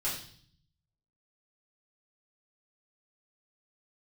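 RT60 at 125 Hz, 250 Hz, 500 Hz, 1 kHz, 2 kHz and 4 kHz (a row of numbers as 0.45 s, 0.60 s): 1.1 s, 0.95 s, 0.55 s, 0.50 s, 0.55 s, 0.65 s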